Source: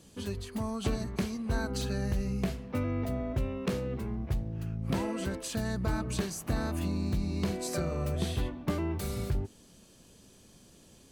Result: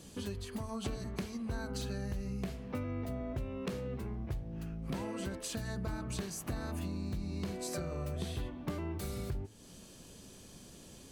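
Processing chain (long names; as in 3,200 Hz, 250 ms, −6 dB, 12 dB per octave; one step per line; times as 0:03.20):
hum removal 109.3 Hz, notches 31
downward compressor 2.5 to 1, threshold −44 dBFS, peak gain reduction 12.5 dB
level +4 dB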